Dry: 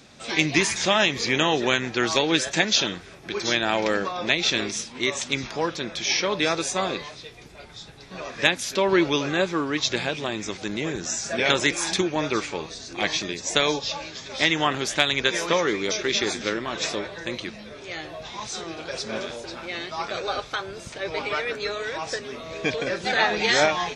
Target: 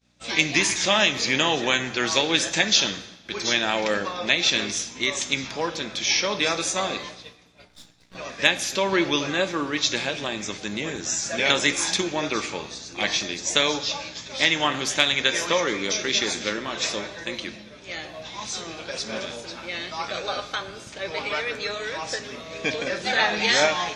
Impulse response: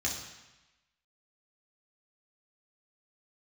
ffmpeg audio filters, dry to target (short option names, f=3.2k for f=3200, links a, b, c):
-filter_complex "[0:a]aeval=exprs='val(0)+0.00891*(sin(2*PI*60*n/s)+sin(2*PI*2*60*n/s)/2+sin(2*PI*3*60*n/s)/3+sin(2*PI*4*60*n/s)/4+sin(2*PI*5*60*n/s)/5)':c=same,lowshelf=f=150:g=-10.5,agate=range=-33dB:threshold=-36dB:ratio=3:detection=peak,asettb=1/sr,asplit=3[a][b][c];[a]atrim=end=7.684[d];[b]atrim=start=7.68:end=8.15,asetpts=PTS-STARTPTS,afade=t=in:d=0.004:c=qsin,afade=t=out:st=0.466:d=0.004:c=qsin,aeval=exprs='max(val(0),0)':c=same[e];[c]atrim=start=8.146[f];[d][e]acrossfade=d=0.004:c1=hsin:c2=qsin[g];[g][f]acrossfade=d=0.004:c1=qsin:c2=hsin,asplit=2[h][i];[1:a]atrim=start_sample=2205[j];[i][j]afir=irnorm=-1:irlink=0,volume=-13.5dB[k];[h][k]amix=inputs=2:normalize=0"